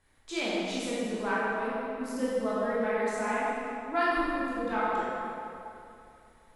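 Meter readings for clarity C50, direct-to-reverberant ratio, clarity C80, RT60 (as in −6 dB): −5.0 dB, −9.0 dB, −2.0 dB, 2.8 s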